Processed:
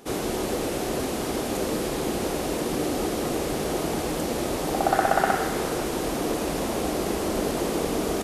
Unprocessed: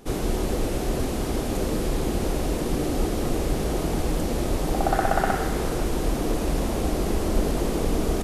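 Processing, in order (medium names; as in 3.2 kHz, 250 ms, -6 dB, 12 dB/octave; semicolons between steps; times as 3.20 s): high-pass 290 Hz 6 dB/octave; trim +2.5 dB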